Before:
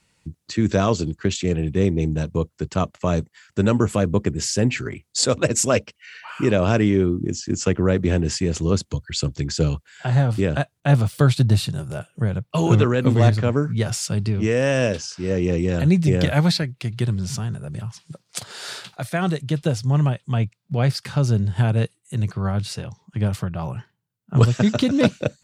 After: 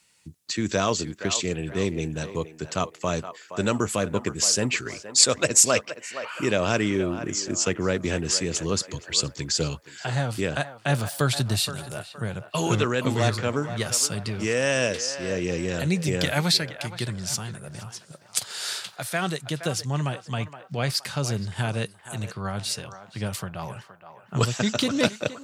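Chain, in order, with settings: tilt EQ +2.5 dB/octave; on a send: band-passed feedback delay 470 ms, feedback 46%, band-pass 970 Hz, level -9.5 dB; on the sum: trim -2 dB

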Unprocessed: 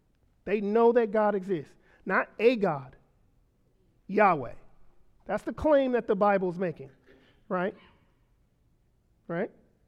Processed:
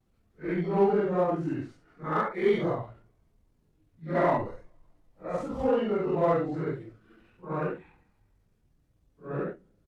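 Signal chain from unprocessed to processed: phase randomisation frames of 200 ms; pitch shift -3 st; vibrato 0.42 Hz 23 cents; in parallel at -10 dB: overload inside the chain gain 26 dB; on the sum: trim -2.5 dB

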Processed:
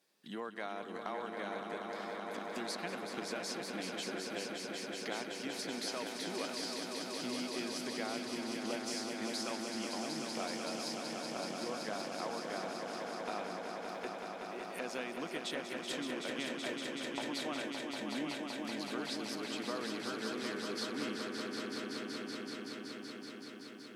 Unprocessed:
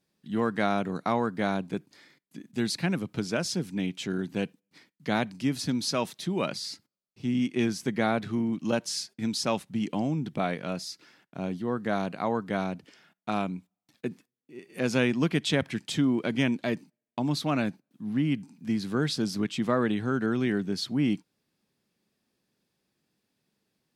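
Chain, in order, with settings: high-pass 410 Hz 12 dB/octave; compression 3:1, threshold -48 dBFS, peak gain reduction 18.5 dB; on a send: echo with a slow build-up 189 ms, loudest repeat 5, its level -6.5 dB; on the sum: trim +3.5 dB

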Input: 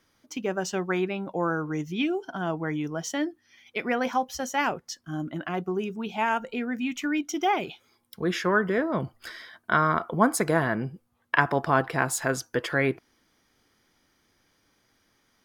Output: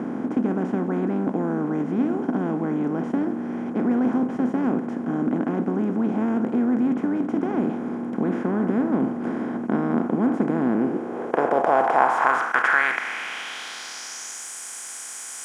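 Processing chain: spectral levelling over time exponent 0.2; band-pass sweep 250 Hz -> 8 kHz, 10.69–14.50 s; trim +1.5 dB

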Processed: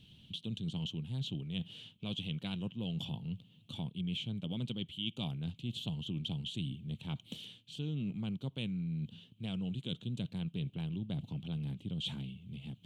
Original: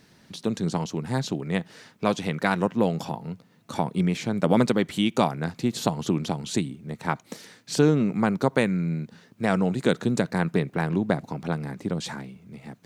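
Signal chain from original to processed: FFT filter 110 Hz 0 dB, 430 Hz -18 dB, 1.9 kHz -27 dB, 3.1 kHz +8 dB, 5 kHz -21 dB, 8.2 kHz -16 dB; reverse; compression 6:1, threshold -39 dBFS, peak gain reduction 16.5 dB; reverse; trim +3.5 dB

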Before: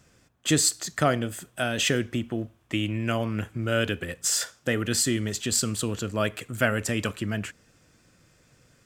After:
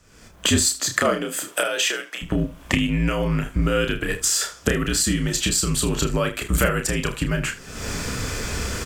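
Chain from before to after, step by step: recorder AGC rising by 53 dB/s; 0.78–2.21 s: high-pass 180 Hz -> 700 Hz 24 dB/octave; frequency shift -59 Hz; early reflections 31 ms -5.5 dB, 78 ms -15.5 dB; trim +1.5 dB

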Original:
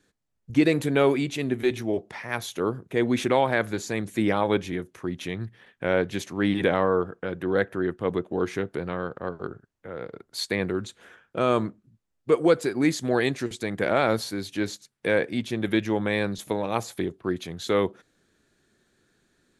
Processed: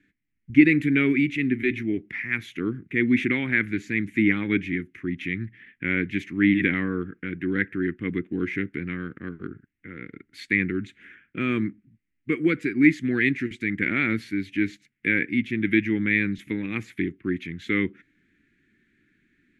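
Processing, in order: FFT filter 130 Hz 0 dB, 300 Hz +6 dB, 600 Hz -24 dB, 930 Hz -21 dB, 2.1 kHz +12 dB, 4.2 kHz -13 dB, 10 kHz -17 dB

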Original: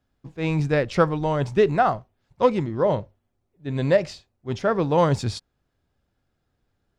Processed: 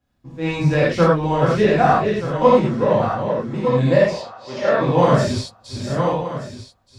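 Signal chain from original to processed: backward echo that repeats 613 ms, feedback 42%, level -5 dB; 4.10–4.81 s: three-band isolator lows -15 dB, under 360 Hz, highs -21 dB, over 7 kHz; gated-style reverb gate 130 ms flat, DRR -7.5 dB; trim -3.5 dB

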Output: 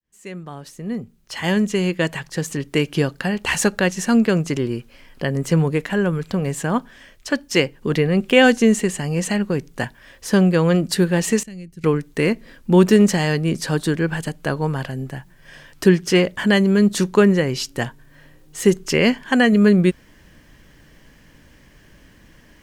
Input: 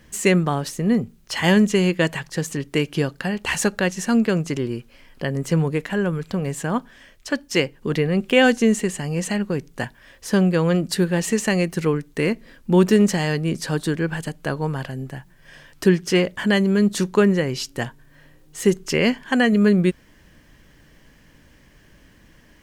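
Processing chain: fade-in on the opening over 2.98 s; 11.43–11.84 s: amplifier tone stack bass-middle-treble 10-0-1; trim +2.5 dB

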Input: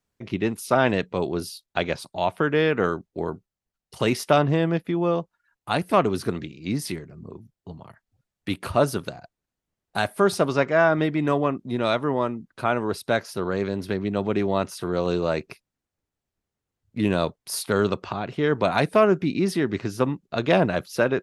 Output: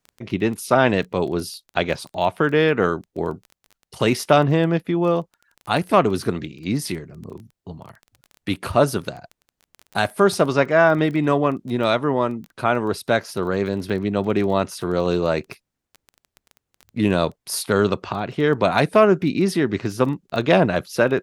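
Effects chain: crackle 14 per s -33 dBFS; trim +3.5 dB

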